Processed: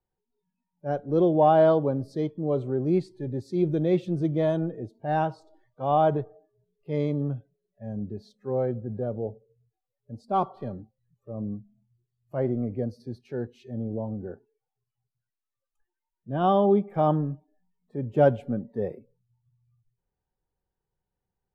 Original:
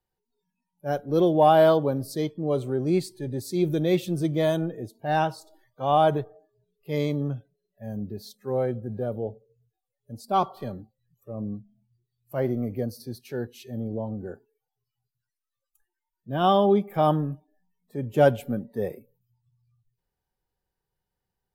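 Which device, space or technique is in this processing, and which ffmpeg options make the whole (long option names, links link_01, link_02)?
through cloth: -af "lowpass=6300,highshelf=frequency=2000:gain=-13.5"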